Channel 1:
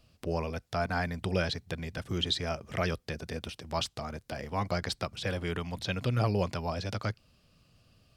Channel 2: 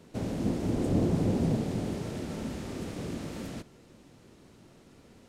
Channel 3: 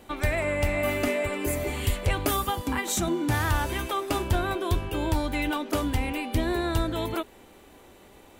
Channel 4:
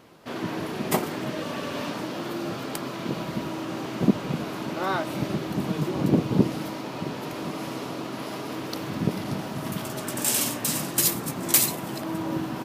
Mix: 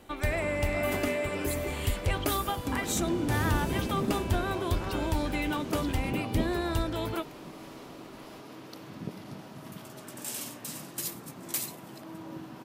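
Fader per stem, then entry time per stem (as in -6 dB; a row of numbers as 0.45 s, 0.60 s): -12.0 dB, -6.0 dB, -3.5 dB, -13.0 dB; 0.00 s, 2.50 s, 0.00 s, 0.00 s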